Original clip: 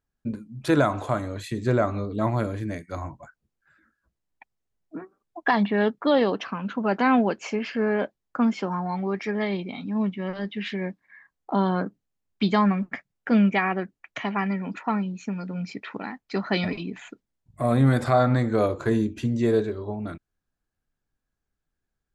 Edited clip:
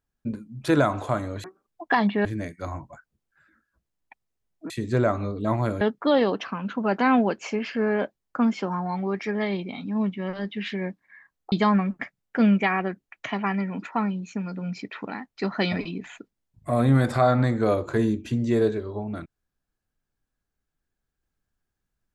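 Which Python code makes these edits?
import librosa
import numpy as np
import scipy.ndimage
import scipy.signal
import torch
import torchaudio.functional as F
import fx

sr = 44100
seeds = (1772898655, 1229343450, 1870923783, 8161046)

y = fx.edit(x, sr, fx.swap(start_s=1.44, length_s=1.11, other_s=5.0, other_length_s=0.81),
    fx.cut(start_s=11.52, length_s=0.92), tone=tone)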